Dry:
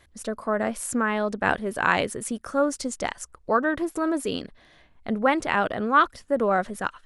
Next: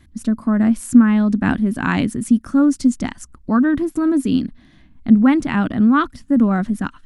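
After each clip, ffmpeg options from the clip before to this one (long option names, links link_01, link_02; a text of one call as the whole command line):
ffmpeg -i in.wav -af "lowshelf=frequency=350:width_type=q:width=3:gain=10.5" out.wav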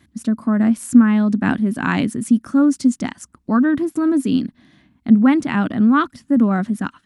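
ffmpeg -i in.wav -af "highpass=120" out.wav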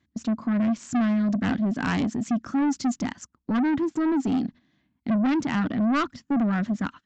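ffmpeg -i in.wav -af "agate=range=-14dB:threshold=-36dB:ratio=16:detection=peak,aresample=16000,asoftclip=type=tanh:threshold=-18.5dB,aresample=44100,volume=-1.5dB" out.wav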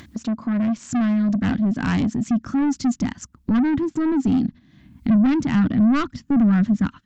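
ffmpeg -i in.wav -af "acompressor=mode=upward:threshold=-26dB:ratio=2.5,asubboost=boost=3.5:cutoff=250,volume=1dB" out.wav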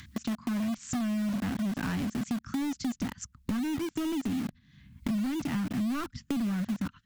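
ffmpeg -i in.wav -filter_complex "[0:a]acrossover=split=210|1100|1200[link_01][link_02][link_03][link_04];[link_02]acrusher=bits=4:mix=0:aa=0.000001[link_05];[link_01][link_05][link_03][link_04]amix=inputs=4:normalize=0,acompressor=threshold=-27dB:ratio=5,volume=-2.5dB" out.wav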